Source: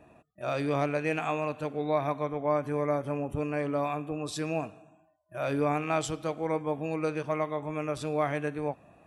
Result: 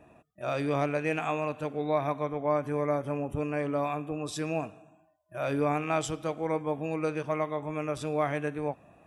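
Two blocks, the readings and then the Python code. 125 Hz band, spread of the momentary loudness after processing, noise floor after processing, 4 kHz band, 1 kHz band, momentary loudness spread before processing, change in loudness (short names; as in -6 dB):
0.0 dB, 6 LU, -63 dBFS, -0.5 dB, 0.0 dB, 6 LU, 0.0 dB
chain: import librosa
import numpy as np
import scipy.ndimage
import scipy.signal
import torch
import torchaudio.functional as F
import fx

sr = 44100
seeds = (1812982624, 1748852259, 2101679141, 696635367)

y = fx.notch(x, sr, hz=4300.0, q=9.8)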